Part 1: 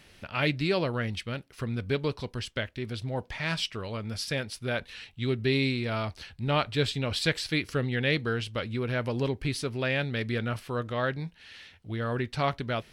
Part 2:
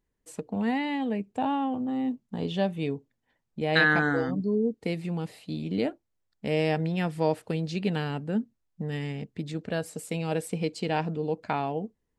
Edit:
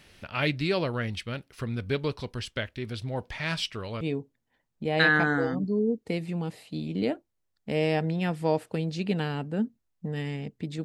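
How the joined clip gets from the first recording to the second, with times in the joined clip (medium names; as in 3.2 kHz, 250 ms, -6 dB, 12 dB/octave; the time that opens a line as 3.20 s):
part 1
4.01 s: go over to part 2 from 2.77 s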